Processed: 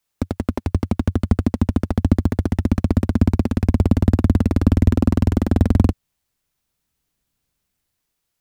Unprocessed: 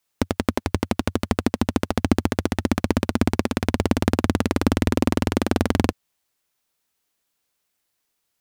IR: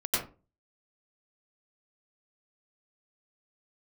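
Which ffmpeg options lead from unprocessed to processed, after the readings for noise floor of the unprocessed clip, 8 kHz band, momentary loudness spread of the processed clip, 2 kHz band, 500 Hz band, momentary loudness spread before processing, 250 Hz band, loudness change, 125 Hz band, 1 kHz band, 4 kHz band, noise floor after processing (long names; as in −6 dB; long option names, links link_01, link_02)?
−76 dBFS, can't be measured, 7 LU, −7.0 dB, −2.0 dB, 4 LU, +3.0 dB, +4.0 dB, +8.5 dB, −4.5 dB, −9.0 dB, −77 dBFS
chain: -filter_complex "[0:a]lowshelf=frequency=120:gain=7.5,acrossover=split=230[link_01][link_02];[link_01]dynaudnorm=framelen=190:gausssize=9:maxgain=13dB[link_03];[link_02]aeval=exprs='clip(val(0),-1,0.141)':channel_layout=same[link_04];[link_03][link_04]amix=inputs=2:normalize=0,volume=-1.5dB"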